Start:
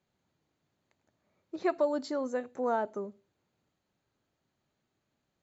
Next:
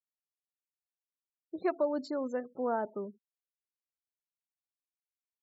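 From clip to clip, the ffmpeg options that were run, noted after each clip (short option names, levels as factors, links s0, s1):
-af "lowshelf=f=410:g=4.5,afftfilt=real='re*gte(hypot(re,im),0.00708)':imag='im*gte(hypot(re,im),0.00708)':win_size=1024:overlap=0.75,volume=0.668"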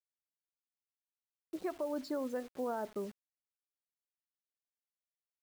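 -af "alimiter=level_in=1.58:limit=0.0631:level=0:latency=1:release=135,volume=0.631,acrusher=bits=8:mix=0:aa=0.000001,volume=0.891"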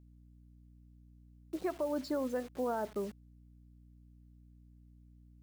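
-af "aeval=exprs='val(0)+0.001*(sin(2*PI*60*n/s)+sin(2*PI*2*60*n/s)/2+sin(2*PI*3*60*n/s)/3+sin(2*PI*4*60*n/s)/4+sin(2*PI*5*60*n/s)/5)':c=same,volume=1.33"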